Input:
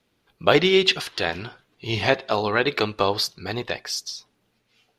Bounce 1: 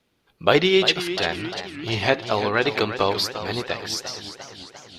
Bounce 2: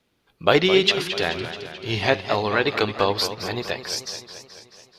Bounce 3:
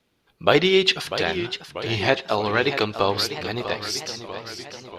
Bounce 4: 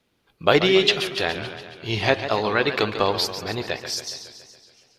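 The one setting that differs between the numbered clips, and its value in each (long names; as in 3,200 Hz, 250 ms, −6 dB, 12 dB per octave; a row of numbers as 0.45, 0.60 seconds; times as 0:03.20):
feedback echo with a swinging delay time, delay time: 344, 216, 641, 140 milliseconds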